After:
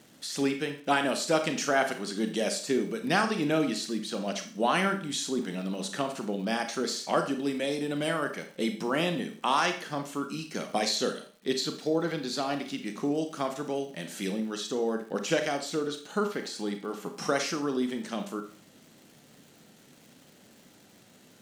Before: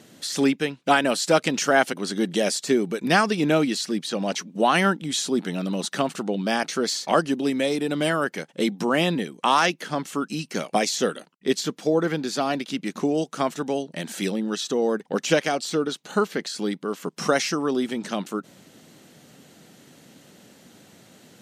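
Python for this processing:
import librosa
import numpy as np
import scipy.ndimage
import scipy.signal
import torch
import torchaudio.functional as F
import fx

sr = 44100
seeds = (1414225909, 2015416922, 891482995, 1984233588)

y = fx.peak_eq(x, sr, hz=4100.0, db=9.5, octaves=0.26, at=(10.75, 12.41))
y = fx.rev_schroeder(y, sr, rt60_s=0.44, comb_ms=28, drr_db=6.0)
y = fx.dmg_crackle(y, sr, seeds[0], per_s=320.0, level_db=-40.0)
y = fx.peak_eq(y, sr, hz=810.0, db=7.5, octaves=0.23, at=(16.42, 17.27))
y = y * librosa.db_to_amplitude(-7.0)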